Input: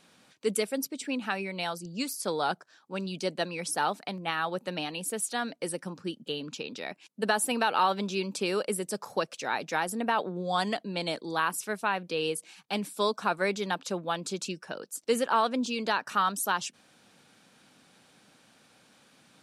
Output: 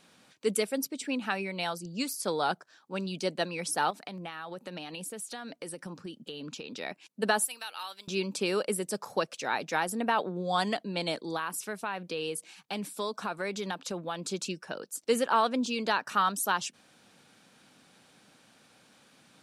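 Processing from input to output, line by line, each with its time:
3.90–6.74 s: compression, threshold -36 dBFS
7.44–8.08 s: differentiator
11.36–14.28 s: compression 2.5:1, threshold -31 dBFS

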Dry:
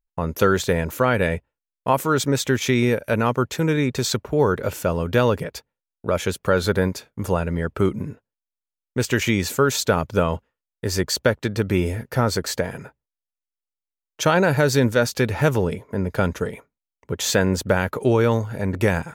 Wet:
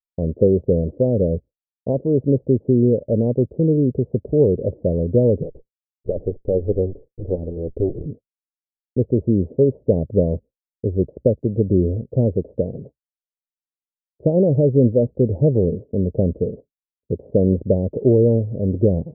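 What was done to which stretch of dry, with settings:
5.43–8.06 s: comb filter that takes the minimum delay 2.2 ms
whole clip: expander -34 dBFS; steep low-pass 580 Hz 48 dB/octave; trim +4 dB

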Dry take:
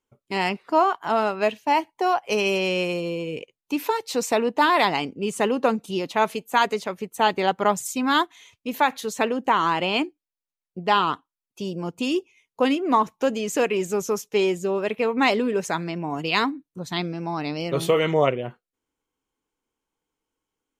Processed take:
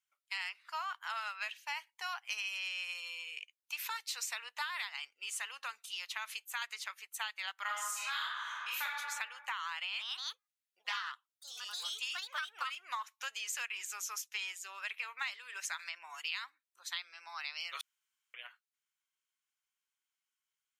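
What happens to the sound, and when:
4.91–6.62 s: compression 2:1, threshold -22 dBFS
7.62–8.84 s: reverb throw, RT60 1.2 s, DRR -8.5 dB
9.79–13.15 s: ever faster or slower copies 184 ms, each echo +3 st, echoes 2
15.79–16.22 s: three bands compressed up and down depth 70%
17.81–18.34 s: room tone
whole clip: high-pass 1.4 kHz 24 dB/octave; compression 12:1, threshold -32 dBFS; trim -3 dB

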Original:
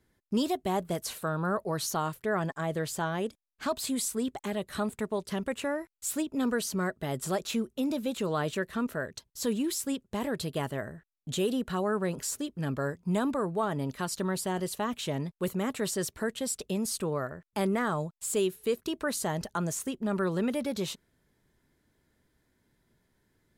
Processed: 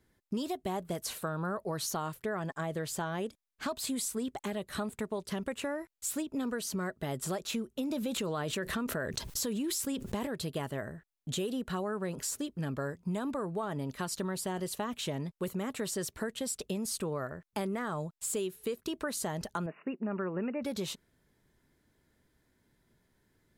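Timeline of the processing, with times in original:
7.92–10.27 s: level flattener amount 70%
19.66–20.63 s: brick-wall FIR band-pass 160–2900 Hz
whole clip: compression, threshold -31 dBFS

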